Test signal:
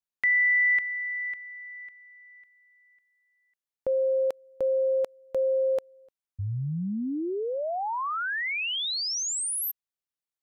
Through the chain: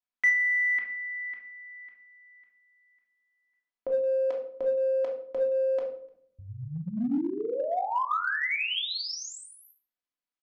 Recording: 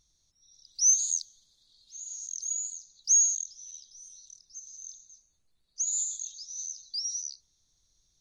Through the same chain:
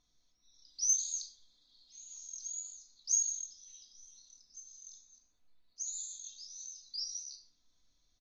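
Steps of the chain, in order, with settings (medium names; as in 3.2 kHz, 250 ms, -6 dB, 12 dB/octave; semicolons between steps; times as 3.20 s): distance through air 150 m; comb 4 ms, depth 44%; simulated room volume 890 m³, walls furnished, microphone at 2.9 m; in parallel at -12 dB: hard clipper -21 dBFS; on the sum: bass shelf 190 Hz -11 dB; trim -4 dB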